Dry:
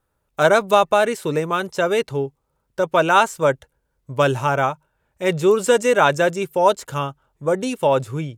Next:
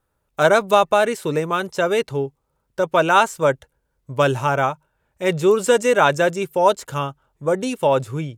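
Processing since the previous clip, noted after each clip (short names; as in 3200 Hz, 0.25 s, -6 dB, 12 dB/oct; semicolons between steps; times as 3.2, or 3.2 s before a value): nothing audible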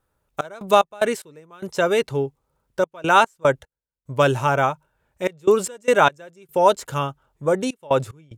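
step gate "xx.x.x..xxxx" 74 bpm -24 dB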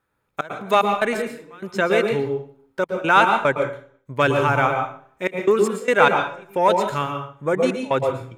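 in parallel at -4 dB: soft clip -10 dBFS, distortion -15 dB; on the sum: reverb RT60 0.50 s, pre-delay 0.109 s, DRR 5 dB; gain -8.5 dB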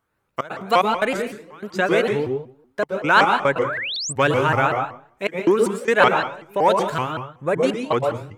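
painted sound rise, 3.64–4.13, 1000–8100 Hz -27 dBFS; shaped vibrato saw up 5.3 Hz, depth 250 cents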